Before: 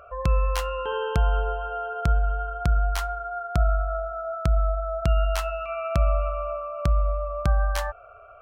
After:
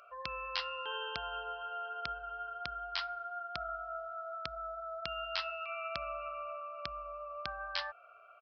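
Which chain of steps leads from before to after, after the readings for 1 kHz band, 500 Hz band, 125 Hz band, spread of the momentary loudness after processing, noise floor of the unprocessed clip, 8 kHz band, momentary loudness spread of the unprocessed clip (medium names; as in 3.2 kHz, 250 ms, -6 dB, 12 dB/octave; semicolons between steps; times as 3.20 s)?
-9.5 dB, -15.0 dB, -33.0 dB, 5 LU, -48 dBFS, under -20 dB, 6 LU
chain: differentiator; resampled via 11.025 kHz; trim +6.5 dB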